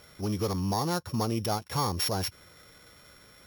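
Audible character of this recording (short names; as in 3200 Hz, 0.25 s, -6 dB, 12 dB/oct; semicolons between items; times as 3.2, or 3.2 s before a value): a buzz of ramps at a fixed pitch in blocks of 8 samples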